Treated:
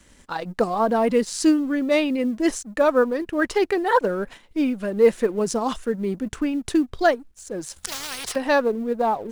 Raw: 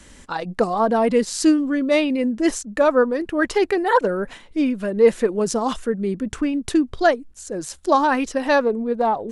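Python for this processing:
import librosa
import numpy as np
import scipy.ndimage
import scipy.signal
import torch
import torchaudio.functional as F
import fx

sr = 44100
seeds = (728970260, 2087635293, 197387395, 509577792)

y = fx.law_mismatch(x, sr, coded='A')
y = fx.spectral_comp(y, sr, ratio=10.0, at=(7.76, 8.36))
y = y * 10.0 ** (-1.5 / 20.0)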